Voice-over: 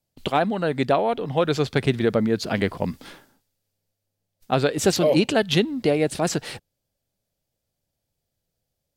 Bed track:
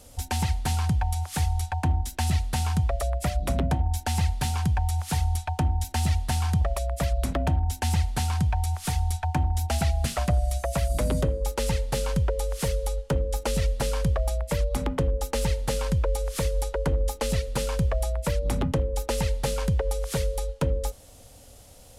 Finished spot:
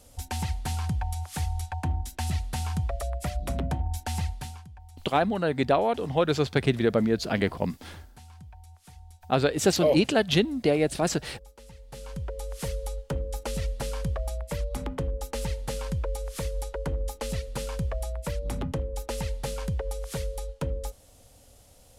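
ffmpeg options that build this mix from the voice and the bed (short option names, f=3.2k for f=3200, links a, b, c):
-filter_complex "[0:a]adelay=4800,volume=-2.5dB[a];[1:a]volume=13dB,afade=t=out:st=4.17:d=0.48:silence=0.11885,afade=t=in:st=11.77:d=0.89:silence=0.133352[b];[a][b]amix=inputs=2:normalize=0"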